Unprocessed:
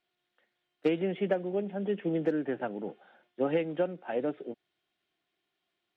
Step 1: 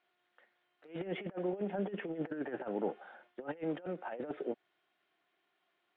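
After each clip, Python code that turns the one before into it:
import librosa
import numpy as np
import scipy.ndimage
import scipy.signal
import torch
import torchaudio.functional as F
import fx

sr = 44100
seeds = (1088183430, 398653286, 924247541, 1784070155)

y = fx.tilt_eq(x, sr, slope=4.5)
y = fx.over_compress(y, sr, threshold_db=-40.0, ratio=-0.5)
y = scipy.signal.sosfilt(scipy.signal.butter(2, 1300.0, 'lowpass', fs=sr, output='sos'), y)
y = y * librosa.db_to_amplitude(3.5)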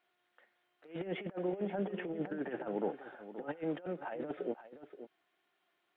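y = x + 10.0 ** (-12.5 / 20.0) * np.pad(x, (int(527 * sr / 1000.0), 0))[:len(x)]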